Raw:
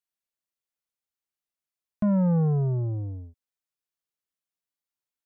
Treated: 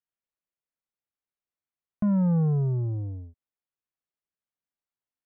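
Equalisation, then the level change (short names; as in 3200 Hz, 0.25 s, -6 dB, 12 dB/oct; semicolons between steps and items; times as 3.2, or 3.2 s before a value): dynamic EQ 610 Hz, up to -6 dB, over -45 dBFS, Q 2.5; air absorption 410 m; 0.0 dB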